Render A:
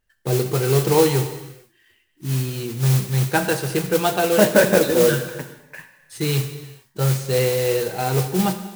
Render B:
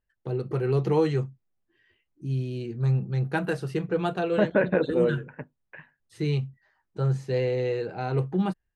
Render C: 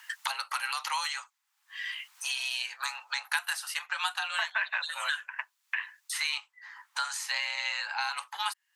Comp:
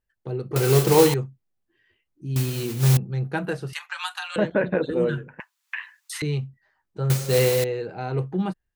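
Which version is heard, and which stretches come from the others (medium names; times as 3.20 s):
B
0.56–1.14 s: from A
2.36–2.97 s: from A
3.73–4.36 s: from C
5.40–6.22 s: from C
7.10–7.64 s: from A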